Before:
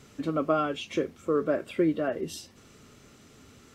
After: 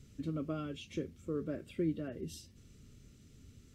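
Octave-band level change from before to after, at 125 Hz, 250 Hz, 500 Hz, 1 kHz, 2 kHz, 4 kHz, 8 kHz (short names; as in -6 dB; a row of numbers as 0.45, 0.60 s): -2.5, -8.5, -13.5, -20.0, -15.5, -11.0, -9.0 dB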